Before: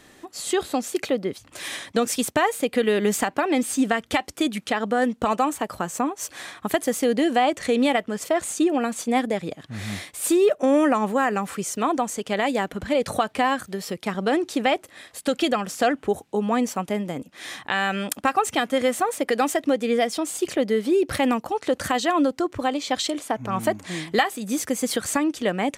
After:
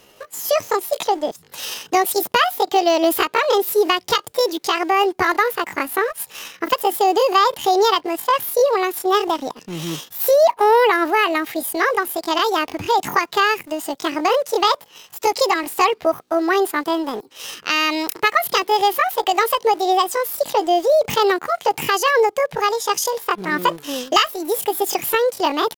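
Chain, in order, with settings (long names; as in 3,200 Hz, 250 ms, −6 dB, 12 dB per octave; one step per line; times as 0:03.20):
in parallel at −5 dB: centre clipping without the shift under −34.5 dBFS
on the sum: pitch shifter +8 semitones
level +1 dB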